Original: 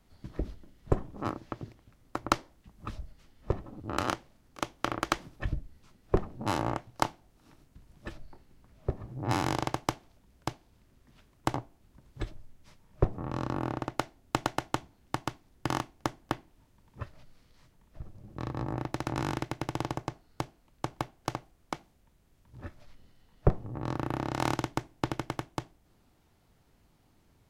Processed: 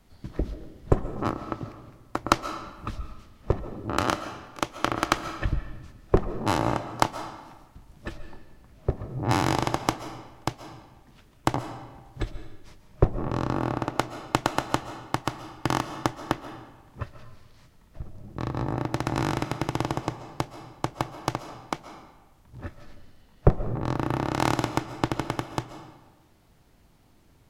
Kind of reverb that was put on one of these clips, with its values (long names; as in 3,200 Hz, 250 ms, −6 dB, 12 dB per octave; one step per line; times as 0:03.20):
comb and all-pass reverb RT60 1.2 s, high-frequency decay 0.8×, pre-delay 95 ms, DRR 10 dB
level +5.5 dB